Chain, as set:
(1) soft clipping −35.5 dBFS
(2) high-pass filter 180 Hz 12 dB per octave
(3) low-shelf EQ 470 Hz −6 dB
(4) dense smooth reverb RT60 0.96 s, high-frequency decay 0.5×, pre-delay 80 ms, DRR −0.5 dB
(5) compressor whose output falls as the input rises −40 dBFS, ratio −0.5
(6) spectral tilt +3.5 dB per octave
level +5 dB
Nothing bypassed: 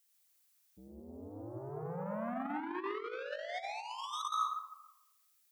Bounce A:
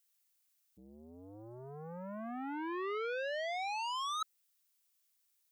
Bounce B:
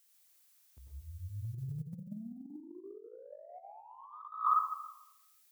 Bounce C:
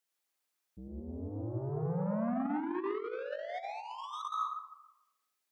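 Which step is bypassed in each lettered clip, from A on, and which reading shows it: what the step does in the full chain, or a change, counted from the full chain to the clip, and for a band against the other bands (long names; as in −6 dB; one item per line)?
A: 4, 125 Hz band −6.5 dB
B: 1, distortion level −12 dB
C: 6, 125 Hz band +10.0 dB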